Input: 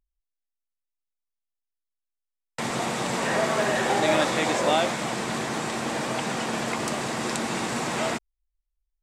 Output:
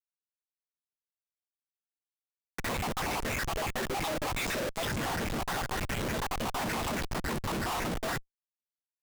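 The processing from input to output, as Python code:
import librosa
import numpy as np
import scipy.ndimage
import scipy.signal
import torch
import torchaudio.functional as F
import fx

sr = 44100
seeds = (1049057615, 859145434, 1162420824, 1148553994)

y = fx.spec_dropout(x, sr, seeds[0], share_pct=73)
y = fx.schmitt(y, sr, flips_db=-35.5)
y = F.gain(torch.from_numpy(y), 1.5).numpy()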